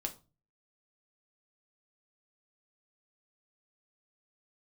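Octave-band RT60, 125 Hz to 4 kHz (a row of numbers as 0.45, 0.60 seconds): 0.60, 0.45, 0.35, 0.30, 0.25, 0.25 seconds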